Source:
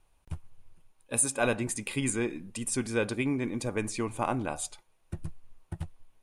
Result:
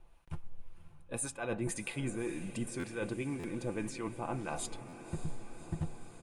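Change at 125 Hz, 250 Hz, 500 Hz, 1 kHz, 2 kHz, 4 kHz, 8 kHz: -4.0 dB, -6.0 dB, -7.0 dB, -7.5 dB, -8.0 dB, -8.0 dB, -11.0 dB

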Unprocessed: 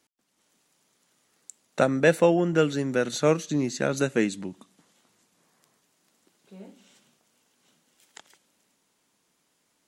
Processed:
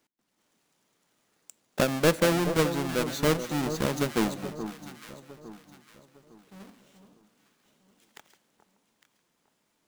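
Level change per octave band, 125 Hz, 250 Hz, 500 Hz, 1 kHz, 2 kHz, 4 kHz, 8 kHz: -1.0 dB, -2.0 dB, -4.0 dB, -0.5 dB, -2.0 dB, +3.0 dB, +0.5 dB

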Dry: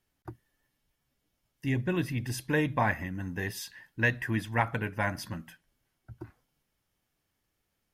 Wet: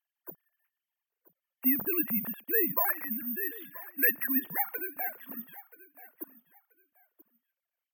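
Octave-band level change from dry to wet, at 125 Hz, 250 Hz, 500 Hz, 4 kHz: -20.0 dB, -2.5 dB, -4.0 dB, under -15 dB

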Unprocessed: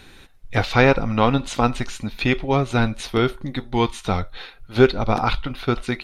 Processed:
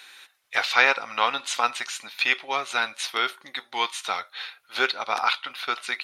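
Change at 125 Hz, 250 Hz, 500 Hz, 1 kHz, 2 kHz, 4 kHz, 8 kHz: under -35 dB, -22.5 dB, -13.0 dB, -2.0 dB, +2.0 dB, +3.0 dB, +3.0 dB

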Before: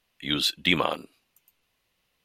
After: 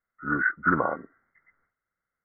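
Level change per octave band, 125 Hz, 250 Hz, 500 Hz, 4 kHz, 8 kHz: 0.0 dB, 0.0 dB, 0.0 dB, under -40 dB, under -40 dB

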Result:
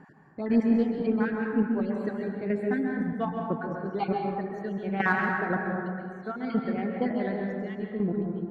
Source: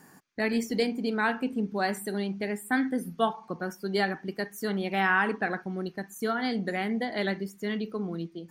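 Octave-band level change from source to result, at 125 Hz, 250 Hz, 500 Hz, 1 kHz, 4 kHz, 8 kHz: +3.5 dB, +3.5 dB, +0.5 dB, -1.0 dB, -13.5 dB, under -20 dB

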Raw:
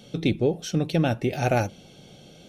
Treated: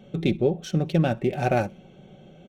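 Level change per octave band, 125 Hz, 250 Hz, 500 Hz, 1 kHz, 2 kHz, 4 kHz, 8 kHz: +0.5 dB, +0.5 dB, +1.0 dB, +0.5 dB, -1.0 dB, -3.5 dB, -6.5 dB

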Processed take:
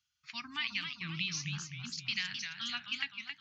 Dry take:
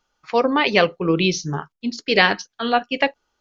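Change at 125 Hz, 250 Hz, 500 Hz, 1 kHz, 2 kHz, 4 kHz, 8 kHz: -15.0 dB, -24.5 dB, under -40 dB, -28.0 dB, -16.0 dB, -11.0 dB, no reading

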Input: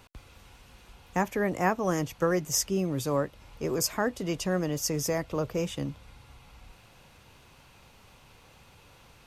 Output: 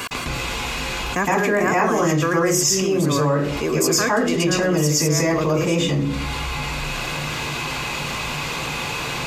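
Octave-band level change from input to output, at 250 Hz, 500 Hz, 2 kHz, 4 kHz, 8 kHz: +10.5 dB, +10.0 dB, +14.5 dB, +14.5 dB, +11.5 dB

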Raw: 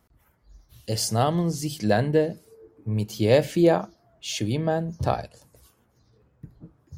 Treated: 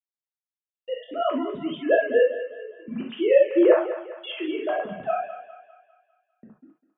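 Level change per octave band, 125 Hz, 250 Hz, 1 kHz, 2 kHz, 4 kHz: under -20 dB, -1.5 dB, -1.5 dB, +3.5 dB, -5.5 dB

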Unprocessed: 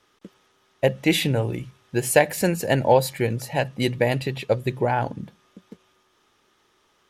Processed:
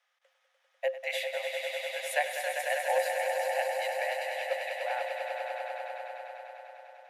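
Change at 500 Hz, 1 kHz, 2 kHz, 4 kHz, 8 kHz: -8.5 dB, -6.0 dB, -3.5 dB, -8.0 dB, -11.0 dB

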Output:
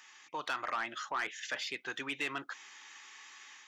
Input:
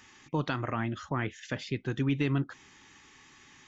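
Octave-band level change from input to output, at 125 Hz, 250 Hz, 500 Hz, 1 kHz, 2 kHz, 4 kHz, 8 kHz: -29.5 dB, -17.0 dB, -9.0 dB, 0.0 dB, +2.0 dB, +3.0 dB, no reading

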